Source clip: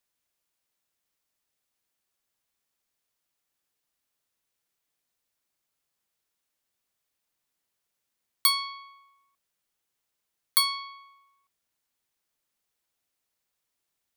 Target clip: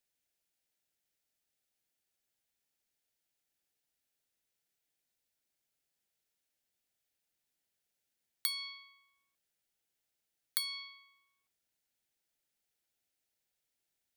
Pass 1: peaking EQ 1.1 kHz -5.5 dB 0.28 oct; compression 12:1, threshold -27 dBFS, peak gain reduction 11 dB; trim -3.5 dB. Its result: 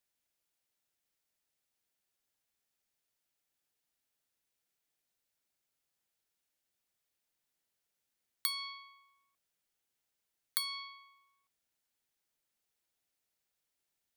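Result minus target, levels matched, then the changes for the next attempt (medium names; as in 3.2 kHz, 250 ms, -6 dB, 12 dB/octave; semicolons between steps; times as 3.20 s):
1 kHz band +8.5 dB
change: peaking EQ 1.1 kHz -15 dB 0.28 oct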